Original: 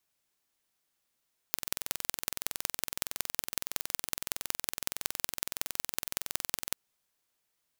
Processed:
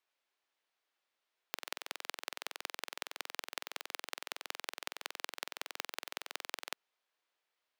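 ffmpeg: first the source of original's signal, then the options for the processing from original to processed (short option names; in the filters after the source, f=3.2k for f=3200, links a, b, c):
-f lavfi -i "aevalsrc='0.891*eq(mod(n,2042),0)*(0.5+0.5*eq(mod(n,8168),0))':d=5.21:s=44100"
-filter_complex "[0:a]acrossover=split=340 4400:gain=0.0631 1 0.158[a][b][c];[a][b][c]amix=inputs=3:normalize=0"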